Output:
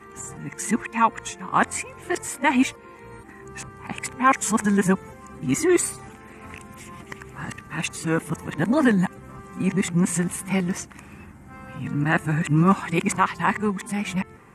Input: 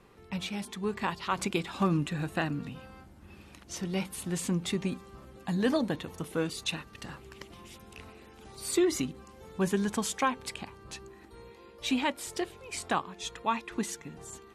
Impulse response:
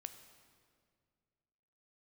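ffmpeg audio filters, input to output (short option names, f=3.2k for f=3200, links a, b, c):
-af "areverse,equalizer=f=125:t=o:w=1:g=9,equalizer=f=250:t=o:w=1:g=6,equalizer=f=1k:t=o:w=1:g=7,equalizer=f=2k:t=o:w=1:g=11,equalizer=f=4k:t=o:w=1:g=-10,equalizer=f=8k:t=o:w=1:g=10,volume=2dB"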